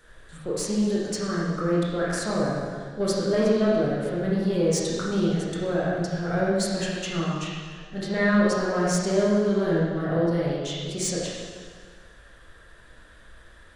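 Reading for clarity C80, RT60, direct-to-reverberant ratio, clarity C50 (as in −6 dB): 0.5 dB, 1.7 s, −6.5 dB, −2.0 dB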